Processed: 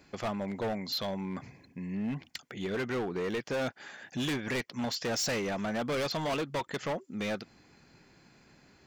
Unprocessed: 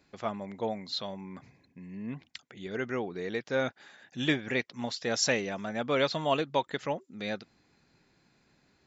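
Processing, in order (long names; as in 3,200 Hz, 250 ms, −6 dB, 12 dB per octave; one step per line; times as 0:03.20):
notch filter 3,800 Hz, Q 10
in parallel at +2.5 dB: downward compressor, threshold −38 dBFS, peak gain reduction 15 dB
on the sum: hard clipping −29 dBFS, distortion −6 dB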